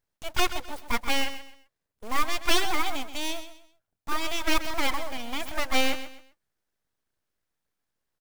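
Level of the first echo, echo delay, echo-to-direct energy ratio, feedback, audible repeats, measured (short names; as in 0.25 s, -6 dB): -12.0 dB, 0.129 s, -11.5 dB, 30%, 3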